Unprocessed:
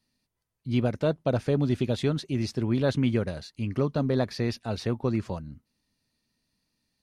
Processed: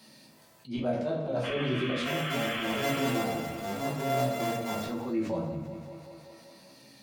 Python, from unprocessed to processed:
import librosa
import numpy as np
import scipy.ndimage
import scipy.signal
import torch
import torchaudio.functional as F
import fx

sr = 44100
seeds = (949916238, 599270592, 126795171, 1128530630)

y = fx.sample_sort(x, sr, block=64, at=(2.02, 4.82), fade=0.02)
y = scipy.signal.sosfilt(scipy.signal.butter(2, 190.0, 'highpass', fs=sr, output='sos'), y)
y = fx.peak_eq(y, sr, hz=620.0, db=5.5, octaves=0.72)
y = fx.auto_swell(y, sr, attack_ms=108.0)
y = fx.spec_paint(y, sr, seeds[0], shape='noise', start_s=1.43, length_s=1.68, low_hz=1000.0, high_hz=3500.0, level_db=-36.0)
y = fx.chorus_voices(y, sr, voices=2, hz=0.39, base_ms=14, depth_ms=1.9, mix_pct=35)
y = fx.echo_thinned(y, sr, ms=192, feedback_pct=57, hz=250.0, wet_db=-16.5)
y = fx.room_shoebox(y, sr, seeds[1], volume_m3=110.0, walls='mixed', distance_m=1.1)
y = fx.env_flatten(y, sr, amount_pct=50)
y = y * librosa.db_to_amplitude(-7.5)